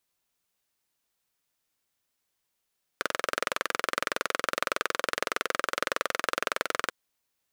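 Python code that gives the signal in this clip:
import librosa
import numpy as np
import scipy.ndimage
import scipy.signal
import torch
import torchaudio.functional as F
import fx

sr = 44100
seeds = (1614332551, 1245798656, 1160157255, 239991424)

y = fx.engine_single(sr, seeds[0], length_s=3.89, rpm=2600, resonances_hz=(540.0, 1300.0))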